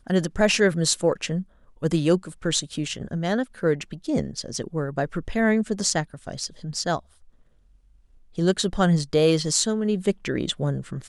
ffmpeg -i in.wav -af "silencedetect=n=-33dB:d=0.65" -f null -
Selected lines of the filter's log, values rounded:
silence_start: 6.99
silence_end: 8.38 | silence_duration: 1.39